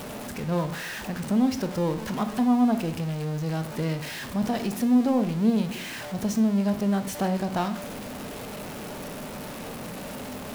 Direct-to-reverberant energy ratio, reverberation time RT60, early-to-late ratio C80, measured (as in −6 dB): 9.0 dB, 0.65 s, 15.5 dB